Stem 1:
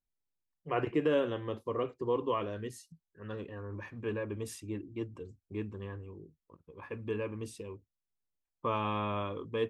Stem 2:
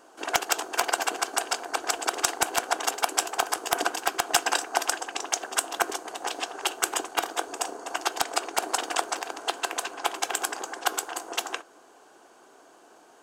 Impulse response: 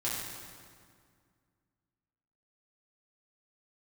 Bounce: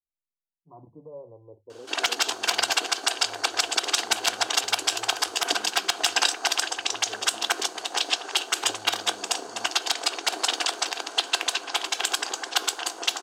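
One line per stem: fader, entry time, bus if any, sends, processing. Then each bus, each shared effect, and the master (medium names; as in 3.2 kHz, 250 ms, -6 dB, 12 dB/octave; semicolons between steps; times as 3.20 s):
-9.5 dB, 0.00 s, no send, elliptic low-pass 970 Hz, stop band 40 dB; hum notches 50/100/150 Hz; barber-pole phaser -0.56 Hz
-1.0 dB, 1.70 s, no send, peaking EQ 4 kHz +14 dB 1.6 oct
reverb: none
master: peak limiter -7.5 dBFS, peak gain reduction 10.5 dB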